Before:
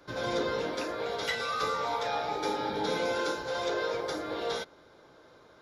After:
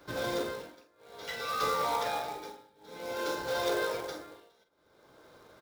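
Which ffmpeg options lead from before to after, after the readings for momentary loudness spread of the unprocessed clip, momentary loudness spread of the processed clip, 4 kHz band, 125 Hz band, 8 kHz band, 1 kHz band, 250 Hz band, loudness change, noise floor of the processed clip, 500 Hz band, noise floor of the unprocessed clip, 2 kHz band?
4 LU, 20 LU, -3.5 dB, -4.0 dB, 0.0 dB, -2.0 dB, -5.0 dB, -2.0 dB, -67 dBFS, -3.5 dB, -58 dBFS, -3.5 dB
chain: -filter_complex "[0:a]tremolo=f=0.55:d=0.98,acrusher=bits=3:mode=log:mix=0:aa=0.000001,asplit=2[a][b];[b]adelay=46,volume=-9.5dB[c];[a][c]amix=inputs=2:normalize=0"

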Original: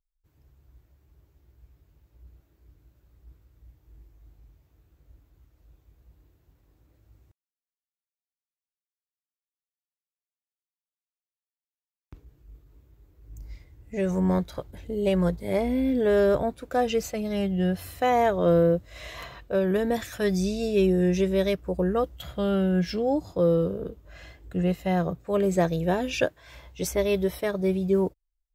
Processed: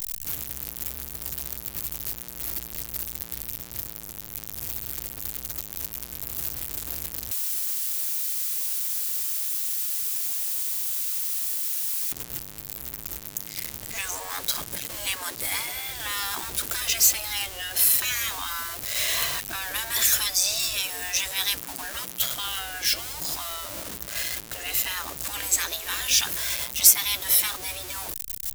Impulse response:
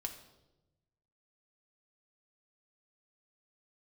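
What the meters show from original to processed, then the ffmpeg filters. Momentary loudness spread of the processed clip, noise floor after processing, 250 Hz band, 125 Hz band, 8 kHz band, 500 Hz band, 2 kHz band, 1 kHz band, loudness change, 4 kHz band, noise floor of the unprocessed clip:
12 LU, -40 dBFS, -21.0 dB, -14.5 dB, +21.0 dB, -20.0 dB, +6.0 dB, -5.5 dB, 0.0 dB, +14.5 dB, under -85 dBFS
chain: -af "aeval=exprs='val(0)+0.5*0.0133*sgn(val(0))':c=same,afftfilt=real='re*lt(hypot(re,im),0.0891)':imag='im*lt(hypot(re,im),0.0891)':win_size=1024:overlap=0.75,crystalizer=i=8:c=0"

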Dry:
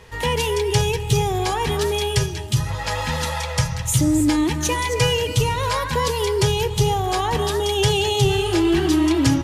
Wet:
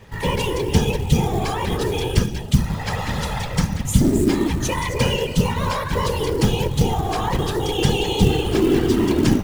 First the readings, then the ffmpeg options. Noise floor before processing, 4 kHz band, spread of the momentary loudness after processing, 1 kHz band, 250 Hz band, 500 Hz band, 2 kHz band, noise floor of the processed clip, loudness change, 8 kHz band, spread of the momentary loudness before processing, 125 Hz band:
-28 dBFS, -3.0 dB, 5 LU, -2.0 dB, +1.5 dB, -1.0 dB, -2.0 dB, -28 dBFS, -0.5 dB, -4.5 dB, 6 LU, +1.0 dB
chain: -af "bass=f=250:g=5,treble=f=4k:g=-3,afftfilt=real='hypot(re,im)*cos(2*PI*random(0))':imag='hypot(re,im)*sin(2*PI*random(1))':win_size=512:overlap=0.75,acrusher=bits=6:mode=log:mix=0:aa=0.000001,volume=4dB"

